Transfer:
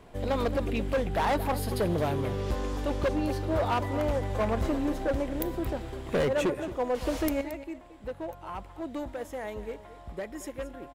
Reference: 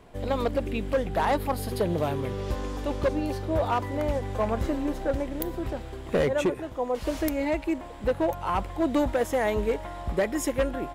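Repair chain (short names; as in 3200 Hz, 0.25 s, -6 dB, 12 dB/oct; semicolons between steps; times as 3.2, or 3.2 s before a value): clip repair -22.5 dBFS; inverse comb 0.224 s -15.5 dB; gain 0 dB, from 7.41 s +11.5 dB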